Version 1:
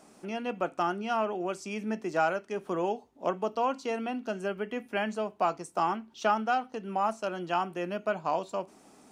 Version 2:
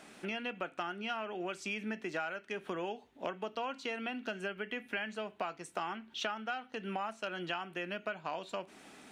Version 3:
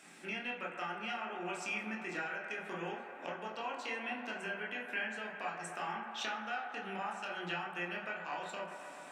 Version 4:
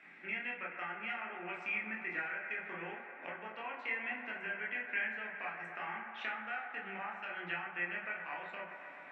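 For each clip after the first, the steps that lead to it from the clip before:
band shelf 2400 Hz +10 dB; compressor 6:1, threshold -35 dBFS, peak gain reduction 15.5 dB
band-limited delay 0.129 s, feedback 84%, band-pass 990 Hz, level -8.5 dB; reverb RT60 0.45 s, pre-delay 22 ms, DRR -1 dB; gain -2 dB
synth low-pass 2100 Hz, resonance Q 4.2; gain -5.5 dB

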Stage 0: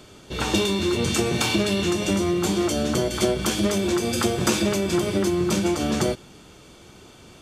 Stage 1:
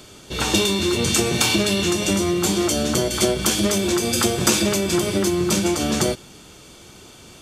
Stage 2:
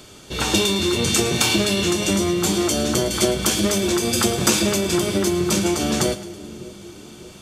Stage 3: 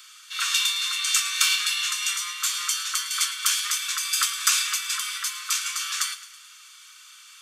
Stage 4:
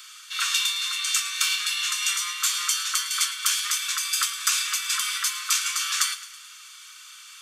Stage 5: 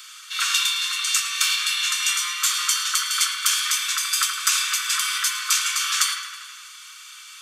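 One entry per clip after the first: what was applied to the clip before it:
high shelf 3700 Hz +7.5 dB; gain +1.5 dB
split-band echo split 520 Hz, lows 0.593 s, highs 0.108 s, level -15.5 dB
steep high-pass 1100 Hz 96 dB/oct; gain -1 dB
vocal rider within 4 dB 0.5 s
dark delay 81 ms, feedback 66%, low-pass 3100 Hz, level -6.5 dB; gain +2.5 dB

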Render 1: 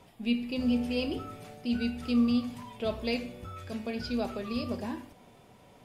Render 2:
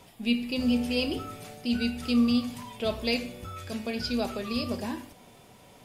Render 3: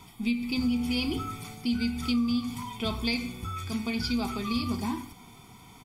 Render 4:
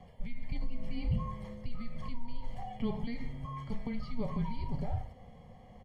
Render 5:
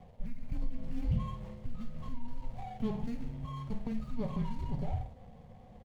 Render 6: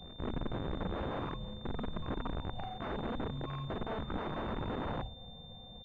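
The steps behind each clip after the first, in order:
high shelf 3100 Hz +8 dB; gain +2 dB
comb 0.9 ms, depth 94%; compressor 6:1, threshold -24 dBFS, peak gain reduction 9 dB
limiter -25 dBFS, peak gain reduction 8.5 dB; band-pass 410 Hz, Q 1.9; frequency shift -230 Hz; gain +8.5 dB
median filter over 25 samples; doubler 50 ms -10.5 dB
wrapped overs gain 32.5 dB; pre-echo 0.178 s -16.5 dB; pulse-width modulation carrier 3600 Hz; gain +1 dB

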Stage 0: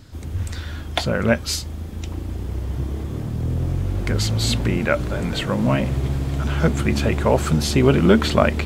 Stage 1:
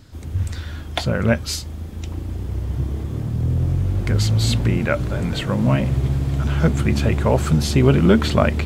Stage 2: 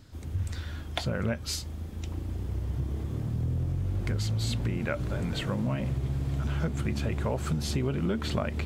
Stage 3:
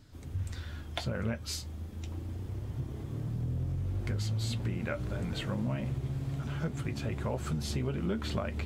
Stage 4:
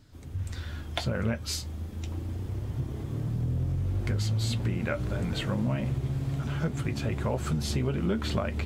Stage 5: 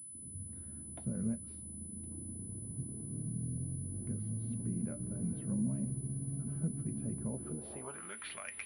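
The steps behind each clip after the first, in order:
dynamic EQ 110 Hz, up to +6 dB, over -31 dBFS, Q 0.94; gain -1.5 dB
compressor 6:1, threshold -19 dBFS, peak gain reduction 10.5 dB; gain -6.5 dB
flange 0.3 Hz, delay 6.7 ms, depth 3.6 ms, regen -53%
AGC gain up to 4.5 dB
band-pass sweep 200 Hz -> 2200 Hz, 7.33–8.16; pulse-width modulation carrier 10000 Hz; gain -2 dB

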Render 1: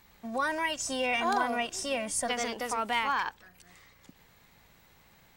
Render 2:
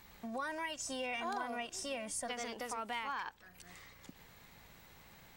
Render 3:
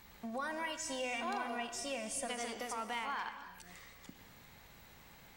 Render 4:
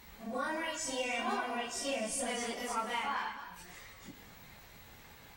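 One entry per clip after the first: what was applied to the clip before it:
compressor 2:1, threshold -48 dBFS, peak gain reduction 13.5 dB; gain +1.5 dB
non-linear reverb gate 0.35 s flat, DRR 8 dB
phase scrambler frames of 0.1 s; gain +3.5 dB

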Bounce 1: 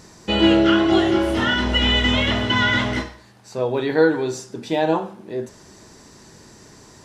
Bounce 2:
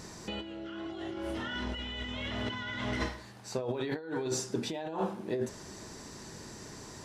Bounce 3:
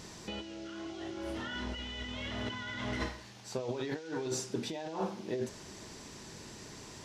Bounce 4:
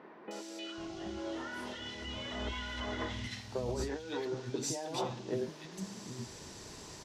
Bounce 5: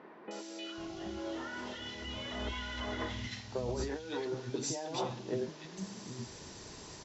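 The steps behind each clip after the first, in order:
negative-ratio compressor -28 dBFS, ratio -1; gain -8.5 dB
band noise 1900–6400 Hz -56 dBFS; gain -2.5 dB
three bands offset in time mids, highs, lows 0.31/0.78 s, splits 240/2000 Hz; gain +1 dB
brick-wall FIR low-pass 7700 Hz

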